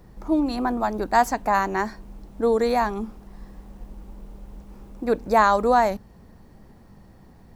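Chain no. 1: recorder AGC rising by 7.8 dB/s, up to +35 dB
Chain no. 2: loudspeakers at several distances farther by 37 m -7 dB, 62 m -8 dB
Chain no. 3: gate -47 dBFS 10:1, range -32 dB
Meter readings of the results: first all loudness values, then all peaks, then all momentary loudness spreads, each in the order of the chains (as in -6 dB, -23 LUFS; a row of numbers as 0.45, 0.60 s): -22.5, -21.5, -22.5 LUFS; -5.0, -4.0, -5.0 dBFS; 22, 15, 13 LU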